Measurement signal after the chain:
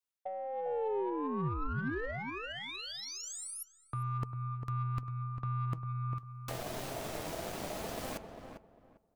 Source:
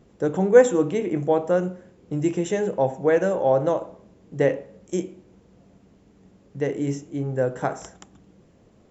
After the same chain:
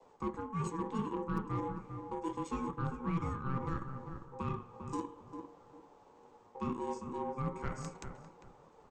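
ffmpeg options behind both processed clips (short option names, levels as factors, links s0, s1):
-filter_complex "[0:a]adynamicequalizer=threshold=0.0447:dfrequency=730:dqfactor=1.1:tfrequency=730:tqfactor=1.1:attack=5:release=100:ratio=0.375:range=2.5:mode=cutabove:tftype=bell,aeval=exprs='val(0)*sin(2*PI*660*n/s)':c=same,areverse,acompressor=threshold=0.0398:ratio=10,areverse,flanger=delay=1.9:depth=6.7:regen=71:speed=0.23:shape=triangular,acrossover=split=470[s0][s1];[s1]acompressor=threshold=0.00501:ratio=3[s2];[s0][s2]amix=inputs=2:normalize=0,aeval=exprs='0.0447*(cos(1*acos(clip(val(0)/0.0447,-1,1)))-cos(1*PI/2))+0.00141*(cos(5*acos(clip(val(0)/0.0447,-1,1)))-cos(5*PI/2))+0.000282*(cos(6*acos(clip(val(0)/0.0447,-1,1)))-cos(6*PI/2))+0.002*(cos(7*acos(clip(val(0)/0.0447,-1,1)))-cos(7*PI/2))+0.000631*(cos(8*acos(clip(val(0)/0.0447,-1,1)))-cos(8*PI/2))':c=same,asplit=2[s3][s4];[s4]adelay=399,lowpass=f=1400:p=1,volume=0.447,asplit=2[s5][s6];[s6]adelay=399,lowpass=f=1400:p=1,volume=0.24,asplit=2[s7][s8];[s8]adelay=399,lowpass=f=1400:p=1,volume=0.24[s9];[s3][s5][s7][s9]amix=inputs=4:normalize=0,volume=1.33"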